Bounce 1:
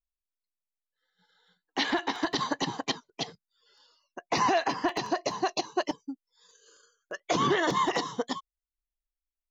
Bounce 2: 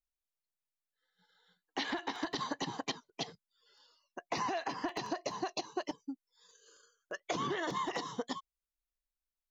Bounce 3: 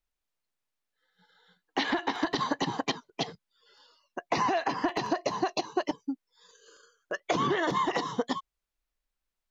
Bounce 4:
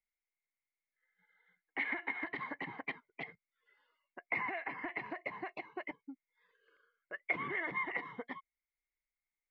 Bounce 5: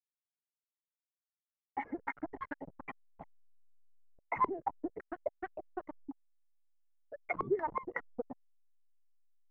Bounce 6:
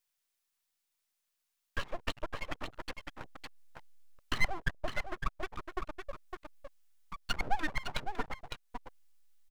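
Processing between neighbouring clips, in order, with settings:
compressor, threshold -29 dBFS, peak gain reduction 8 dB; gain -3.5 dB
high shelf 5400 Hz -9.5 dB; gain +8.5 dB
ladder low-pass 2200 Hz, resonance 90%; gain -2.5 dB
per-bin expansion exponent 2; backlash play -42.5 dBFS; stepped low-pass 5.4 Hz 390–1700 Hz; gain +6.5 dB
echo 0.558 s -7.5 dB; full-wave rectifier; mismatched tape noise reduction encoder only; gain +4.5 dB

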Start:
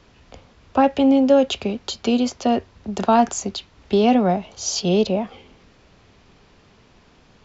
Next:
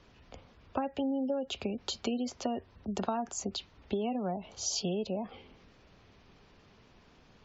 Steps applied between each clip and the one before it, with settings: spectral gate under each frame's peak -30 dB strong; compressor 12:1, threshold -22 dBFS, peak gain reduction 12.5 dB; gain -7 dB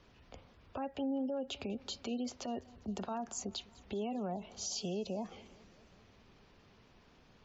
limiter -27 dBFS, peak gain reduction 8.5 dB; warbling echo 0.201 s, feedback 66%, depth 78 cents, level -23 dB; gain -3 dB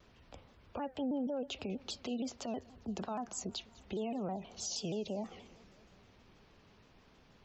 shaped vibrato saw down 6.3 Hz, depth 160 cents

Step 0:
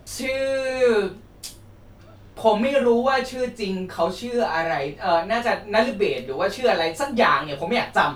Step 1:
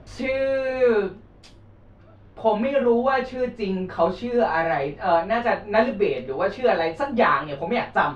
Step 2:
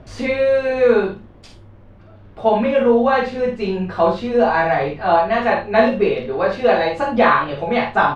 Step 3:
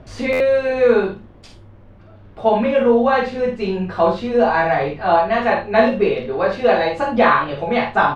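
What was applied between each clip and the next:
Bessel low-pass 2200 Hz, order 2; vocal rider within 4 dB 2 s
early reflections 50 ms -6 dB, 76 ms -14.5 dB; gain +4 dB
stuck buffer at 0.32, samples 512, times 6

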